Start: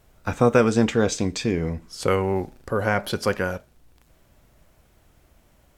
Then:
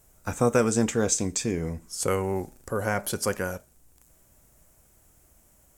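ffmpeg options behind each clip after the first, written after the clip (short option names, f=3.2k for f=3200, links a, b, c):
-af "highshelf=f=5.5k:t=q:w=1.5:g=11,volume=-4.5dB"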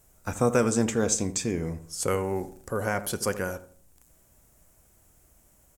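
-filter_complex "[0:a]asplit=2[a][b];[b]adelay=80,lowpass=f=1.1k:p=1,volume=-12dB,asplit=2[c][d];[d]adelay=80,lowpass=f=1.1k:p=1,volume=0.41,asplit=2[e][f];[f]adelay=80,lowpass=f=1.1k:p=1,volume=0.41,asplit=2[g][h];[h]adelay=80,lowpass=f=1.1k:p=1,volume=0.41[i];[a][c][e][g][i]amix=inputs=5:normalize=0,volume=-1dB"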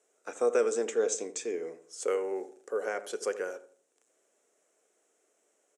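-af "highpass=f=340:w=0.5412,highpass=f=340:w=1.3066,equalizer=f=440:t=q:w=4:g=9,equalizer=f=960:t=q:w=4:g=-6,equalizer=f=4.7k:t=q:w=4:g=-6,lowpass=f=8.2k:w=0.5412,lowpass=f=8.2k:w=1.3066,volume=-6dB"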